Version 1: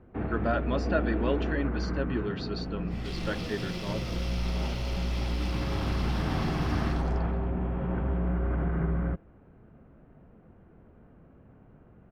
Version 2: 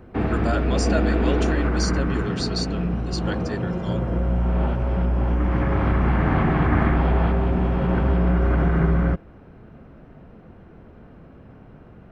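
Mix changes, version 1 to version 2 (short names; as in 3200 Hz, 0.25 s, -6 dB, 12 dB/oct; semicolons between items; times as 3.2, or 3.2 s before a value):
first sound +9.0 dB; second sound: muted; master: remove air absorption 340 m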